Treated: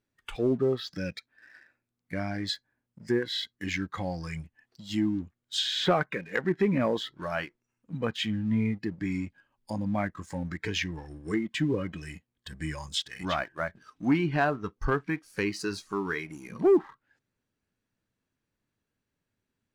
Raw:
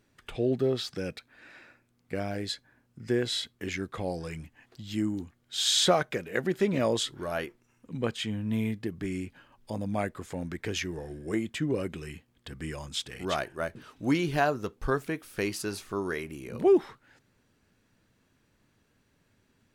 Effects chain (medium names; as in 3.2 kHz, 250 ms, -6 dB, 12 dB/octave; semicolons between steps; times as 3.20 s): low-pass that closes with the level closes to 2.3 kHz, closed at -24.5 dBFS; spectral noise reduction 13 dB; dynamic bell 600 Hz, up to -5 dB, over -40 dBFS, Q 1.5; waveshaping leveller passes 1